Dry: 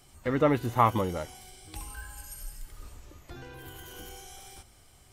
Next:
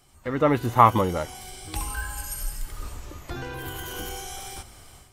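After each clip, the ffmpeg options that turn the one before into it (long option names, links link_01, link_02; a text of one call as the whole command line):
ffmpeg -i in.wav -af "dynaudnorm=framelen=310:gausssize=3:maxgain=12dB,equalizer=frequency=1100:width=1.5:gain=3,volume=-2dB" out.wav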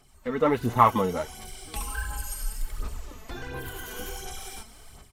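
ffmpeg -i in.wav -af "aecho=1:1:4.6:0.35,aphaser=in_gain=1:out_gain=1:delay=4.6:decay=0.49:speed=1.4:type=sinusoidal,volume=-4dB" out.wav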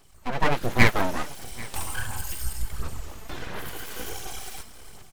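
ffmpeg -i in.wav -af "aeval=exprs='abs(val(0))':channel_layout=same,aecho=1:1:789:0.0841,volume=3.5dB" out.wav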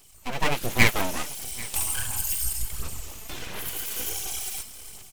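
ffmpeg -i in.wav -af "aexciter=amount=2.1:drive=6.6:freq=2300,volume=-3dB" out.wav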